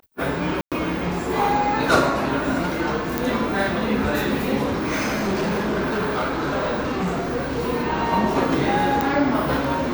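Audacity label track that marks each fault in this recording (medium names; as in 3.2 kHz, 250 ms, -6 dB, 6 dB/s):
0.610000	0.720000	dropout 107 ms
3.180000	3.180000	pop
4.620000	7.590000	clipped -19.5 dBFS
9.010000	9.010000	pop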